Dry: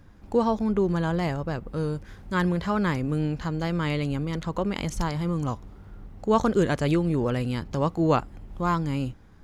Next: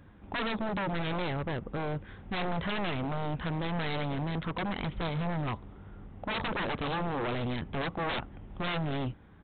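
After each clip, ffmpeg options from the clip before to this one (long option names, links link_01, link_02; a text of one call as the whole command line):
ffmpeg -i in.wav -af "highpass=frequency=70:poles=1,aresample=8000,aeval=exprs='0.0447*(abs(mod(val(0)/0.0447+3,4)-2)-1)':channel_layout=same,aresample=44100" out.wav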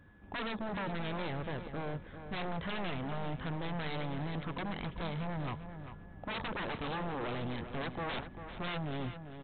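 ffmpeg -i in.wav -filter_complex "[0:a]aeval=exprs='val(0)+0.001*sin(2*PI*1700*n/s)':channel_layout=same,asplit=2[link_01][link_02];[link_02]adelay=394,lowpass=frequency=3200:poles=1,volume=-9.5dB,asplit=2[link_03][link_04];[link_04]adelay=394,lowpass=frequency=3200:poles=1,volume=0.29,asplit=2[link_05][link_06];[link_06]adelay=394,lowpass=frequency=3200:poles=1,volume=0.29[link_07];[link_01][link_03][link_05][link_07]amix=inputs=4:normalize=0,volume=-5.5dB" out.wav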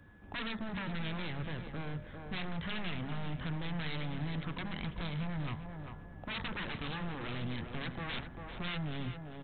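ffmpeg -i in.wav -filter_complex "[0:a]bandreject=frequency=67.32:width_type=h:width=4,bandreject=frequency=134.64:width_type=h:width=4,bandreject=frequency=201.96:width_type=h:width=4,bandreject=frequency=269.28:width_type=h:width=4,bandreject=frequency=336.6:width_type=h:width=4,bandreject=frequency=403.92:width_type=h:width=4,bandreject=frequency=471.24:width_type=h:width=4,bandreject=frequency=538.56:width_type=h:width=4,bandreject=frequency=605.88:width_type=h:width=4,bandreject=frequency=673.2:width_type=h:width=4,bandreject=frequency=740.52:width_type=h:width=4,bandreject=frequency=807.84:width_type=h:width=4,bandreject=frequency=875.16:width_type=h:width=4,bandreject=frequency=942.48:width_type=h:width=4,bandreject=frequency=1009.8:width_type=h:width=4,bandreject=frequency=1077.12:width_type=h:width=4,bandreject=frequency=1144.44:width_type=h:width=4,bandreject=frequency=1211.76:width_type=h:width=4,bandreject=frequency=1279.08:width_type=h:width=4,bandreject=frequency=1346.4:width_type=h:width=4,bandreject=frequency=1413.72:width_type=h:width=4,bandreject=frequency=1481.04:width_type=h:width=4,bandreject=frequency=1548.36:width_type=h:width=4,bandreject=frequency=1615.68:width_type=h:width=4,bandreject=frequency=1683:width_type=h:width=4,bandreject=frequency=1750.32:width_type=h:width=4,bandreject=frequency=1817.64:width_type=h:width=4,bandreject=frequency=1884.96:width_type=h:width=4,bandreject=frequency=1952.28:width_type=h:width=4,bandreject=frequency=2019.6:width_type=h:width=4,bandreject=frequency=2086.92:width_type=h:width=4,acrossover=split=270|1400[link_01][link_02][link_03];[link_02]acompressor=threshold=-50dB:ratio=6[link_04];[link_01][link_04][link_03]amix=inputs=3:normalize=0,volume=2dB" out.wav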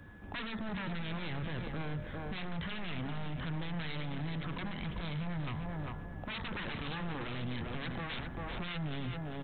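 ffmpeg -i in.wav -af "alimiter=level_in=12.5dB:limit=-24dB:level=0:latency=1:release=20,volume=-12.5dB,volume=5.5dB" out.wav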